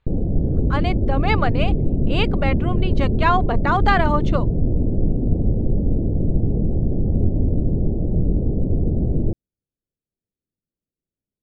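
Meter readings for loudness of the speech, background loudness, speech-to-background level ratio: −23.5 LKFS, −22.0 LKFS, −1.5 dB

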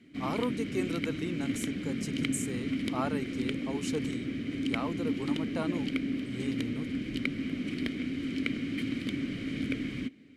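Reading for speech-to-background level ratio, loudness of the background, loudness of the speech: −4.0 dB, −34.0 LKFS, −38.0 LKFS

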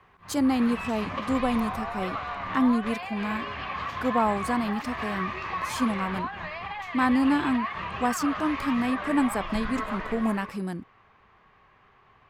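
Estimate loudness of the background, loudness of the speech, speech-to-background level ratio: −33.5 LKFS, −28.0 LKFS, 5.5 dB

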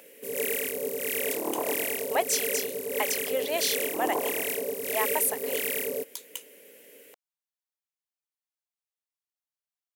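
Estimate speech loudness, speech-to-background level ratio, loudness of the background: −31.0 LKFS, −2.0 dB, −29.0 LKFS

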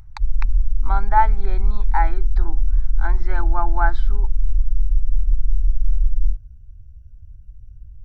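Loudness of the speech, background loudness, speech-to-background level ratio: −25.0 LKFS, −24.5 LKFS, −0.5 dB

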